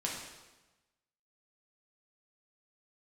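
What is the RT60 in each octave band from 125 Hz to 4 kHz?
1.3, 1.2, 1.1, 1.1, 1.0, 1.0 s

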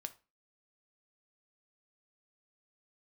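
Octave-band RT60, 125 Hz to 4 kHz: 0.30, 0.40, 0.30, 0.30, 0.30, 0.25 s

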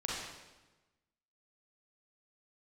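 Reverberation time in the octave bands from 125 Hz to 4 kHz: 1.4, 1.3, 1.2, 1.1, 1.0, 1.0 s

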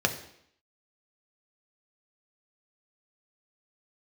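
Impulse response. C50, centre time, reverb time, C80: 11.5 dB, 11 ms, 0.70 s, 14.0 dB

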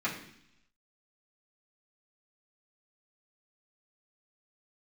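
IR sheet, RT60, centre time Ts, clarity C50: 0.70 s, 25 ms, 7.5 dB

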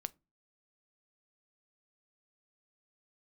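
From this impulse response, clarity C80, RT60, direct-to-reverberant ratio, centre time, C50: 35.0 dB, not exponential, 15.5 dB, 1 ms, 27.5 dB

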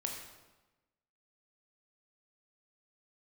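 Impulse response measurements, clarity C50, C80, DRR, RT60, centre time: 4.0 dB, 6.0 dB, 1.0 dB, 1.1 s, 43 ms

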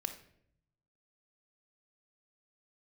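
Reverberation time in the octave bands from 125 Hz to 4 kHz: 1.3, 0.95, 0.80, 0.60, 0.60, 0.50 s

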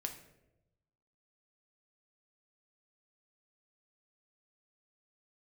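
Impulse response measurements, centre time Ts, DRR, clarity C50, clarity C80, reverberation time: 15 ms, 4.0 dB, 10.0 dB, 12.5 dB, 0.95 s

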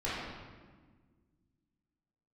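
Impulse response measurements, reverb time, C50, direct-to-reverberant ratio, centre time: 1.5 s, -2.5 dB, -10.5 dB, 0.103 s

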